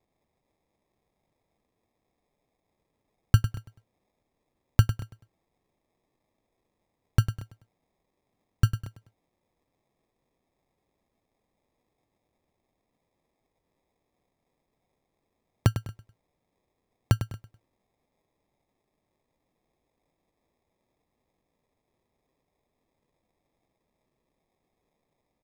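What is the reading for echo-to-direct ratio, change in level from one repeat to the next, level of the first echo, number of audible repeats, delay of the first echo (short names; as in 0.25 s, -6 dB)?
-10.0 dB, -9.5 dB, -10.5 dB, 2, 0.101 s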